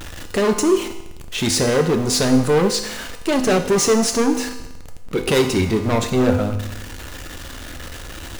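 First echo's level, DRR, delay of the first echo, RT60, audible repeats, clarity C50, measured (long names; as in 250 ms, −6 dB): no echo audible, 5.0 dB, no echo audible, 0.90 s, no echo audible, 9.0 dB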